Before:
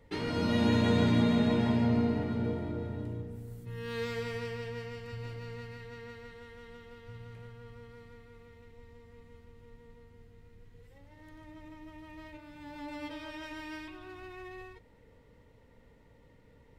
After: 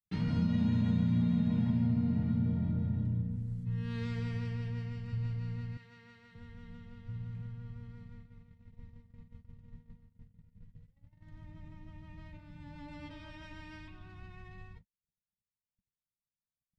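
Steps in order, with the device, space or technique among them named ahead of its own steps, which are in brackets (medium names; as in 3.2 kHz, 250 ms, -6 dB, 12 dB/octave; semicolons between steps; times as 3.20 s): gate -52 dBFS, range -52 dB; jukebox (low-pass 6.7 kHz 12 dB/octave; resonant low shelf 260 Hz +11.5 dB, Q 3; compression 4:1, threshold -20 dBFS, peak gain reduction 10 dB); 5.77–6.35 s: high-pass 810 Hz 6 dB/octave; trim -7 dB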